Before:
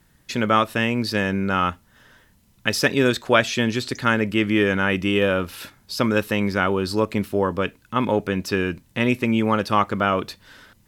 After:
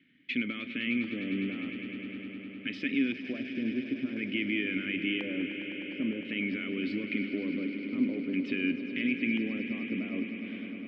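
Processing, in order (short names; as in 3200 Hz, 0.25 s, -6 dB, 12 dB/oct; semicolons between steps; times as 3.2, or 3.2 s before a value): HPF 100 Hz; in parallel at -2 dB: vocal rider within 5 dB; on the sum: limiter -12 dBFS, peak gain reduction 14.5 dB; vowel filter i; LFO low-pass square 0.48 Hz 810–2600 Hz; on a send: swelling echo 0.102 s, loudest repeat 5, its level -13.5 dB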